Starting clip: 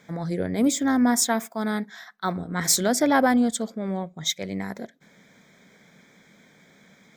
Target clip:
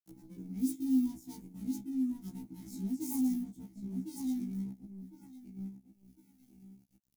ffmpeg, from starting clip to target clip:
ffmpeg -i in.wav -filter_complex "[0:a]asplit=3[link_01][link_02][link_03];[link_01]bandpass=frequency=300:width_type=q:width=8,volume=0dB[link_04];[link_02]bandpass=frequency=870:width_type=q:width=8,volume=-6dB[link_05];[link_03]bandpass=frequency=2240:width_type=q:width=8,volume=-9dB[link_06];[link_04][link_05][link_06]amix=inputs=3:normalize=0,asplit=2[link_07][link_08];[link_08]adelay=31,volume=-9dB[link_09];[link_07][link_09]amix=inputs=2:normalize=0,acrossover=split=150|1200[link_10][link_11][link_12];[link_10]aeval=exprs='(mod(251*val(0)+1,2)-1)/251':channel_layout=same[link_13];[link_13][link_11][link_12]amix=inputs=3:normalize=0,bass=frequency=250:gain=2,treble=frequency=4000:gain=-12,asplit=2[link_14][link_15];[link_15]adelay=1056,lowpass=frequency=1800:poles=1,volume=-4dB,asplit=2[link_16][link_17];[link_17]adelay=1056,lowpass=frequency=1800:poles=1,volume=0.28,asplit=2[link_18][link_19];[link_19]adelay=1056,lowpass=frequency=1800:poles=1,volume=0.28,asplit=2[link_20][link_21];[link_21]adelay=1056,lowpass=frequency=1800:poles=1,volume=0.28[link_22];[link_14][link_16][link_18][link_20][link_22]amix=inputs=5:normalize=0,asplit=2[link_23][link_24];[link_24]acrusher=bits=5:mix=0:aa=0.5,volume=-3dB[link_25];[link_23][link_25]amix=inputs=2:normalize=0,aeval=exprs='sgn(val(0))*max(abs(val(0))-0.00188,0)':channel_layout=same,firequalizer=gain_entry='entry(210,0);entry(420,-18);entry(1100,-29);entry(6400,6)':delay=0.05:min_phase=1,acompressor=mode=upward:threshold=-44dB:ratio=2.5,aexciter=amount=4.8:drive=3.6:freq=10000,afftfilt=real='re*1.73*eq(mod(b,3),0)':imag='im*1.73*eq(mod(b,3),0)':win_size=2048:overlap=0.75" out.wav

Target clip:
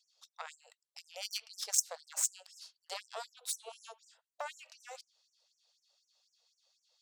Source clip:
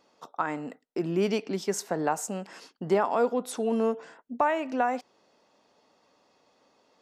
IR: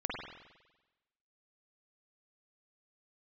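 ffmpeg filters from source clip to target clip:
-filter_complex "[0:a]equalizer=frequency=125:width_type=o:width=1:gain=9,equalizer=frequency=250:width_type=o:width=1:gain=-11,equalizer=frequency=500:width_type=o:width=1:gain=-4,equalizer=frequency=1000:width_type=o:width=1:gain=-11,equalizer=frequency=2000:width_type=o:width=1:gain=-8,equalizer=frequency=4000:width_type=o:width=1:gain=10,equalizer=frequency=8000:width_type=o:width=1:gain=7,aeval=exprs='0.224*(cos(1*acos(clip(val(0)/0.224,-1,1)))-cos(1*PI/2))+0.0398*(cos(3*acos(clip(val(0)/0.224,-1,1)))-cos(3*PI/2))+0.0126*(cos(6*acos(clip(val(0)/0.224,-1,1)))-cos(6*PI/2))+0.00562*(cos(7*acos(clip(val(0)/0.224,-1,1)))-cos(7*PI/2))+0.0158*(cos(8*acos(clip(val(0)/0.224,-1,1)))-cos(8*PI/2))':channel_layout=same,asplit=2[link_01][link_02];[1:a]atrim=start_sample=2205,afade=type=out:start_time=0.18:duration=0.01,atrim=end_sample=8379[link_03];[link_02][link_03]afir=irnorm=-1:irlink=0,volume=-23dB[link_04];[link_01][link_04]amix=inputs=2:normalize=0,afftfilt=real='re*gte(b*sr/1024,430*pow(5700/430,0.5+0.5*sin(2*PI*4*pts/sr)))':imag='im*gte(b*sr/1024,430*pow(5700/430,0.5+0.5*sin(2*PI*4*pts/sr)))':win_size=1024:overlap=0.75,volume=1.5dB"

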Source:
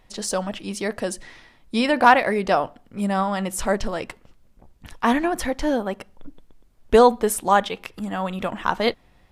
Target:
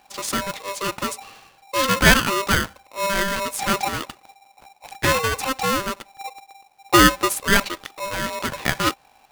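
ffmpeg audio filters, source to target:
ffmpeg -i in.wav -af "aeval=exprs='val(0)*sgn(sin(2*PI*790*n/s))':channel_layout=same" out.wav

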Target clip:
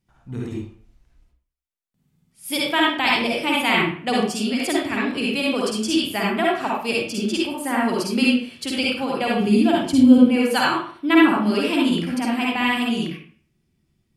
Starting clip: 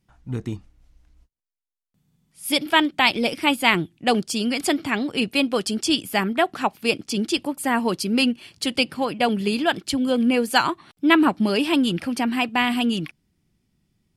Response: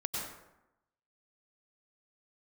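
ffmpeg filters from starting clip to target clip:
-filter_complex "[0:a]asettb=1/sr,asplit=3[link_01][link_02][link_03];[link_01]atrim=end=9.404[link_04];[link_02]atrim=start=9.4:end=10.18,asetpts=PTS-STARTPTS,afade=type=in:duration=0.004:curve=qsin,afade=type=out:start_time=0.776:duration=0.004:curve=qsin,equalizer=frequency=100:width_type=o:width=0.67:gain=8,equalizer=frequency=250:width_type=o:width=0.67:gain=11,equalizer=frequency=1600:width_type=o:width=0.67:gain=-7,equalizer=frequency=4000:width_type=o:width=0.67:gain=-3[link_05];[link_03]atrim=start=10.176[link_06];[link_04][link_05]acrossfade=duration=0.004:curve1=hsin:curve2=qsin[link_07];[link_07][link_06]acrossfade=duration=0.004:curve1=qsin:curve2=hsin[link_08];[1:a]atrim=start_sample=2205,asetrate=83790,aresample=44100[link_09];[link_08][link_09]afir=irnorm=-1:irlink=0,volume=2dB"

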